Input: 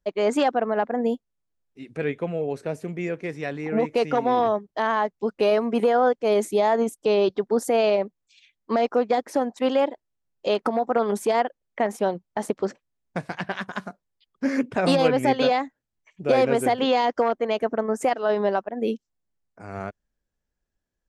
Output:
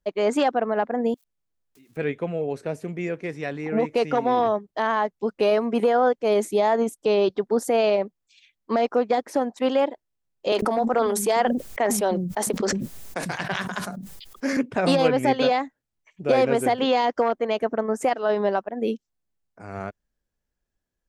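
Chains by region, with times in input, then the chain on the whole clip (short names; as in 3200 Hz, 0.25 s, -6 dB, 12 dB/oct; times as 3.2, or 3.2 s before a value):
1.14–1.97 switching spikes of -40 dBFS + compressor, threshold -53 dBFS
10.52–14.57 high shelf 5600 Hz +10.5 dB + bands offset in time highs, lows 0.1 s, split 230 Hz + sustainer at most 34 dB/s
whole clip: dry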